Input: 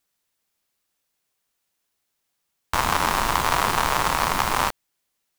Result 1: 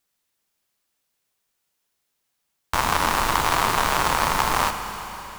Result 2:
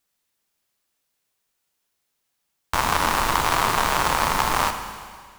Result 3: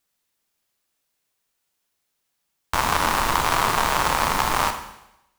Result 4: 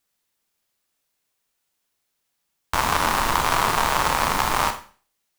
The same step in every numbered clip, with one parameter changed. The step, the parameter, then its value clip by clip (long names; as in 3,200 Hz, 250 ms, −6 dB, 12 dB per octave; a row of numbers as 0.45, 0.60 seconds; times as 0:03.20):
four-comb reverb, RT60: 4, 1.9, 0.86, 0.4 seconds